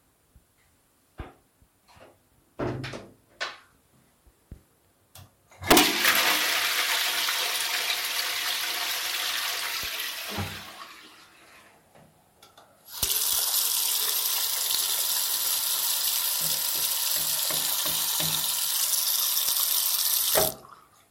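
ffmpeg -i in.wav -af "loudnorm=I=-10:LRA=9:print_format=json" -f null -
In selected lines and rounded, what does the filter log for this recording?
"input_i" : "-23.4",
"input_tp" : "-5.4",
"input_lra" : "16.3",
"input_thresh" : "-35.2",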